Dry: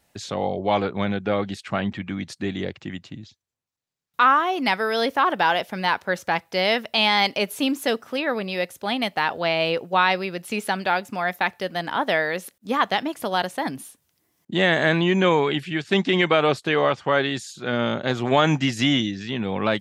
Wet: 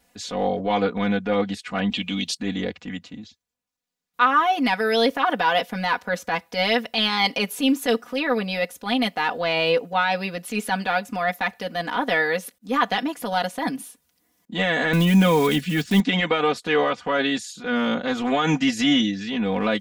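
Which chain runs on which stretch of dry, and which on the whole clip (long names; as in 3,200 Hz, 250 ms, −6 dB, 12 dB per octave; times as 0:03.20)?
0:01.90–0:02.37: high-pass filter 95 Hz + high shelf with overshoot 2,300 Hz +9.5 dB, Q 3
0:14.93–0:16.00: one scale factor per block 5 bits + bass and treble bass +11 dB, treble +4 dB
whole clip: transient designer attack −7 dB, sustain −1 dB; brickwall limiter −11.5 dBFS; comb filter 4.1 ms, depth 91%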